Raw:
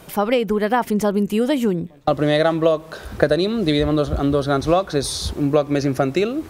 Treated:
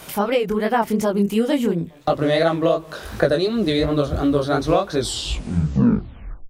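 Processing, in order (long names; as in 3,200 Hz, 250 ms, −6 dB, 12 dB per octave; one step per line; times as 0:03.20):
turntable brake at the end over 1.58 s
chorus effect 2.8 Hz, delay 17.5 ms, depth 7.7 ms
one half of a high-frequency compander encoder only
level +2 dB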